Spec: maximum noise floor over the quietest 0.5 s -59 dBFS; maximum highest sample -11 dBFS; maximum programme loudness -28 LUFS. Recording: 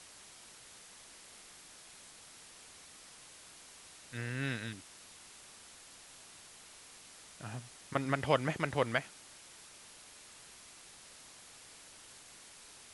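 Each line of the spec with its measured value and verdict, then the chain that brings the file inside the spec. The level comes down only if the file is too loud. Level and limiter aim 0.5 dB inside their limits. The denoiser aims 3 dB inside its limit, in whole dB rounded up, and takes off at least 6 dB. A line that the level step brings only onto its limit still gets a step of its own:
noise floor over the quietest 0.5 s -55 dBFS: fail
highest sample -14.0 dBFS: OK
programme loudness -36.0 LUFS: OK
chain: denoiser 7 dB, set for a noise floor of -55 dBFS

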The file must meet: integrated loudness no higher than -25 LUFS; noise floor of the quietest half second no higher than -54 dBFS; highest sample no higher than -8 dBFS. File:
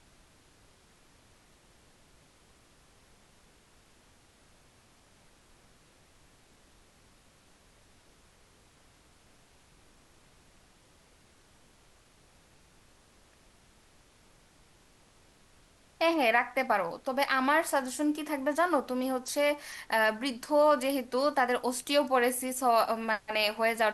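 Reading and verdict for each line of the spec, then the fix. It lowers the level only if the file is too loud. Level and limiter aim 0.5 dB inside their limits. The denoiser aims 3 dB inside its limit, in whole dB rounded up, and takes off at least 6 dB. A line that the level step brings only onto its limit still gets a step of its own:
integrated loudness -28.5 LUFS: OK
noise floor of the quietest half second -62 dBFS: OK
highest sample -12.0 dBFS: OK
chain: none

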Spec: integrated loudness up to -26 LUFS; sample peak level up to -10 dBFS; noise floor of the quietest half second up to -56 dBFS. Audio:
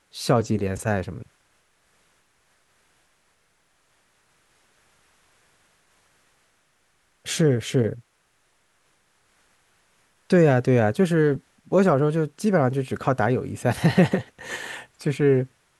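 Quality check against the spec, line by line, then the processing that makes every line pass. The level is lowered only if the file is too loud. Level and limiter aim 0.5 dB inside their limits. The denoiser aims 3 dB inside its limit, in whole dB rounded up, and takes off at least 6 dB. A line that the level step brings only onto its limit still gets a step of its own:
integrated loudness -22.5 LUFS: fail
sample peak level -4.0 dBFS: fail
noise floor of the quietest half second -66 dBFS: OK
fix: gain -4 dB; limiter -10.5 dBFS

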